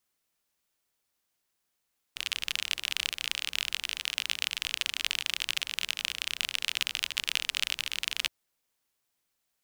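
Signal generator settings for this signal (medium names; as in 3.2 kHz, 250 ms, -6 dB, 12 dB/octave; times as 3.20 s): rain from filtered ticks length 6.12 s, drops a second 37, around 2.9 kHz, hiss -23.5 dB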